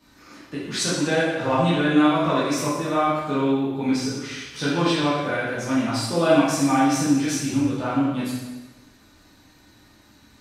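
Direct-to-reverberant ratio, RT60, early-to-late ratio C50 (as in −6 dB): −10.0 dB, 1.1 s, −0.5 dB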